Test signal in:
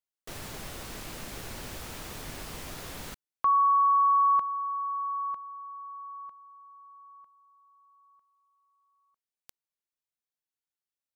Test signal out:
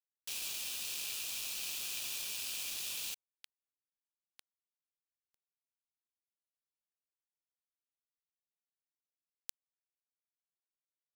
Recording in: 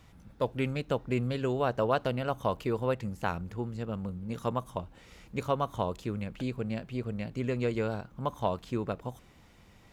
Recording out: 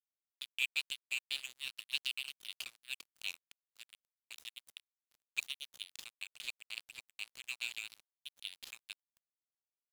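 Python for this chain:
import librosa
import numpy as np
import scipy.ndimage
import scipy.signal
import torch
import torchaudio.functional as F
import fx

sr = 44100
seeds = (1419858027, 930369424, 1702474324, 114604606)

y = fx.brickwall_highpass(x, sr, low_hz=2300.0)
y = np.sign(y) * np.maximum(np.abs(y) - 10.0 ** (-50.0 / 20.0), 0.0)
y = F.gain(torch.from_numpy(y), 10.0).numpy()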